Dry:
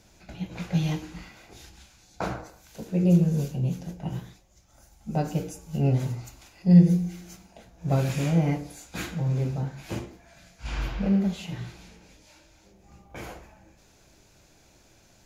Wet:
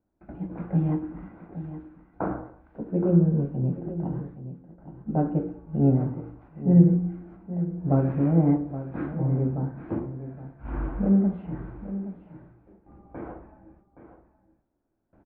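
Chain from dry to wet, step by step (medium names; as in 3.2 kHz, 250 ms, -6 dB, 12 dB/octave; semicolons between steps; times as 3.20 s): hum notches 60/120/180 Hz; gate with hold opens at -46 dBFS; low-pass 1.4 kHz 24 dB/octave; peaking EQ 290 Hz +9 dB 0.73 oct; delay 821 ms -12.5 dB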